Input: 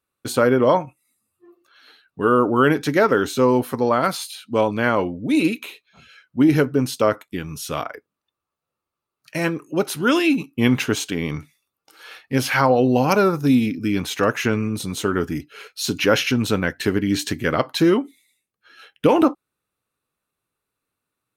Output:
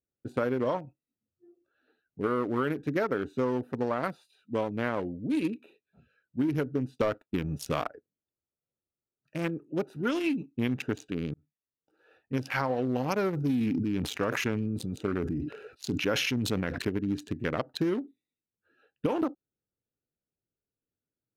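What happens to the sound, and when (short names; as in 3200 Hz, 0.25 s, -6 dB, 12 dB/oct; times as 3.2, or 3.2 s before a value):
6.98–7.89 sample leveller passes 2
11.34–12.18 fade in
13.33–16.89 sustainer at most 24 dB/s
whole clip: Wiener smoothing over 41 samples; compressor, threshold -18 dBFS; gain -6.5 dB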